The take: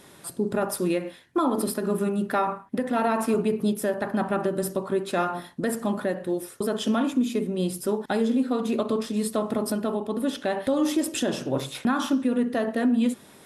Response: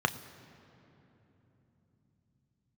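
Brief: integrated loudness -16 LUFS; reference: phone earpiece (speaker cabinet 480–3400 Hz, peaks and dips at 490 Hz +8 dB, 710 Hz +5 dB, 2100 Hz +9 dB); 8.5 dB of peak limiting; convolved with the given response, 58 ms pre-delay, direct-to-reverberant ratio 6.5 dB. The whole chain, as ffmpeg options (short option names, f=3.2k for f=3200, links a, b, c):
-filter_complex "[0:a]alimiter=limit=-23dB:level=0:latency=1,asplit=2[a][b];[1:a]atrim=start_sample=2205,adelay=58[c];[b][c]afir=irnorm=-1:irlink=0,volume=-16.5dB[d];[a][d]amix=inputs=2:normalize=0,highpass=480,equalizer=f=490:t=q:w=4:g=8,equalizer=f=710:t=q:w=4:g=5,equalizer=f=2.1k:t=q:w=4:g=9,lowpass=f=3.4k:w=0.5412,lowpass=f=3.4k:w=1.3066,volume=16.5dB"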